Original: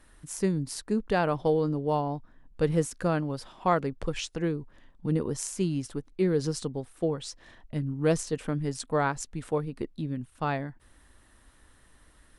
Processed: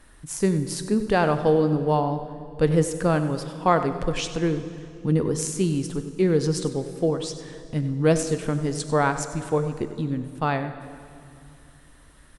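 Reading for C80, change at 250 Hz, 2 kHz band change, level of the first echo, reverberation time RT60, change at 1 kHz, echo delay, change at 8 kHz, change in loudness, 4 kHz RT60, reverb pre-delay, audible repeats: 10.0 dB, +5.5 dB, +5.5 dB, -13.5 dB, 2.5 s, +5.5 dB, 96 ms, +5.5 dB, +5.5 dB, 2.1 s, 7 ms, 1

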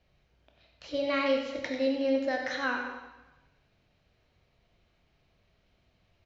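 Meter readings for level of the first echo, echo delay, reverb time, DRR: -9.0 dB, 93 ms, 1.1 s, 1.5 dB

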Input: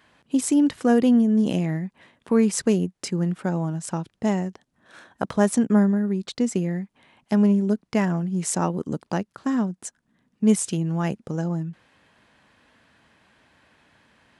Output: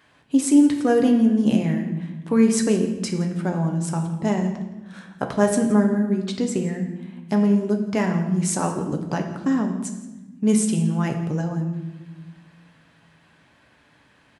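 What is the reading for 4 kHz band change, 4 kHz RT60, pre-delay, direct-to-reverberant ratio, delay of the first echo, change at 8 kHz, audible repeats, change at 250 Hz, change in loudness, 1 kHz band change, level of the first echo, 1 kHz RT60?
+1.5 dB, 0.85 s, 7 ms, 3.0 dB, 0.168 s, +1.5 dB, 1, +1.5 dB, +1.5 dB, +1.5 dB, -17.0 dB, 1.0 s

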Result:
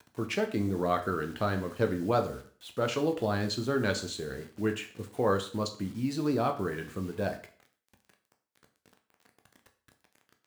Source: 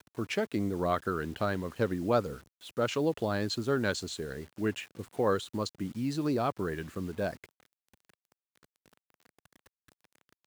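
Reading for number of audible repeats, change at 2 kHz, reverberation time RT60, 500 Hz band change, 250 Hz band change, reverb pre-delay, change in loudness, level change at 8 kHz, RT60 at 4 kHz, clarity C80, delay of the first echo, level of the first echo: none, +1.0 dB, 0.45 s, +1.0 dB, +1.0 dB, 5 ms, +1.0 dB, +1.0 dB, 0.40 s, 16.0 dB, none, none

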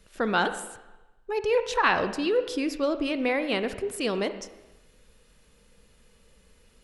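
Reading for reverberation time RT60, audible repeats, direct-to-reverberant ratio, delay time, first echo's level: 1.1 s, none, 10.0 dB, none, none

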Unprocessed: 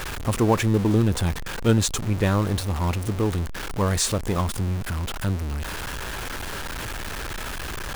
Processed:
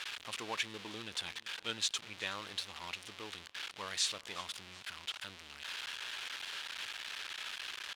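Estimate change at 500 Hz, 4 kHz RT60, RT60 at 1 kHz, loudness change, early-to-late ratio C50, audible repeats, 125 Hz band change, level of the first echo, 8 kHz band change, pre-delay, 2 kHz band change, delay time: -23.5 dB, none, none, -15.0 dB, none, 3, -36.5 dB, -22.0 dB, -12.5 dB, none, -9.0 dB, 0.371 s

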